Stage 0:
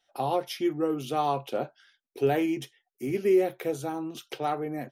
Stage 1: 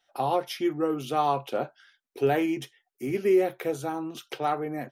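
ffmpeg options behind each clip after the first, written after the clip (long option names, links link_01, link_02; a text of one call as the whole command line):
ffmpeg -i in.wav -af "equalizer=frequency=1300:width_type=o:width=1.6:gain=4" out.wav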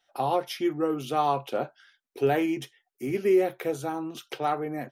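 ffmpeg -i in.wav -af anull out.wav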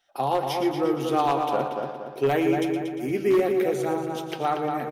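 ffmpeg -i in.wav -filter_complex "[0:a]asplit=2[link_01][link_02];[link_02]adelay=234,lowpass=frequency=2000:poles=1,volume=-7dB,asplit=2[link_03][link_04];[link_04]adelay=234,lowpass=frequency=2000:poles=1,volume=0.35,asplit=2[link_05][link_06];[link_06]adelay=234,lowpass=frequency=2000:poles=1,volume=0.35,asplit=2[link_07][link_08];[link_08]adelay=234,lowpass=frequency=2000:poles=1,volume=0.35[link_09];[link_03][link_05][link_07][link_09]amix=inputs=4:normalize=0[link_10];[link_01][link_10]amix=inputs=2:normalize=0,aeval=exprs='0.158*(abs(mod(val(0)/0.158+3,4)-2)-1)':channel_layout=same,asplit=2[link_11][link_12];[link_12]aecho=0:1:117|234|351|468|585|702|819:0.299|0.176|0.104|0.0613|0.0362|0.0213|0.0126[link_13];[link_11][link_13]amix=inputs=2:normalize=0,volume=1.5dB" out.wav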